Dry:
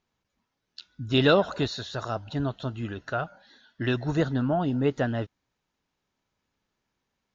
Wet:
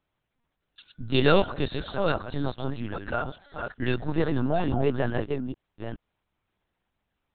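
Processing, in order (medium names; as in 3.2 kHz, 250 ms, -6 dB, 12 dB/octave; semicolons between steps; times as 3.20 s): chunks repeated in reverse 425 ms, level -5 dB; LPC vocoder at 8 kHz pitch kept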